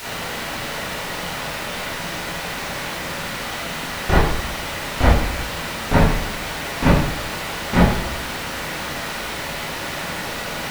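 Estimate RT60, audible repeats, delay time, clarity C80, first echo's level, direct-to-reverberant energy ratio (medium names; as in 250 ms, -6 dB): 0.80 s, no echo, no echo, 5.0 dB, no echo, -9.5 dB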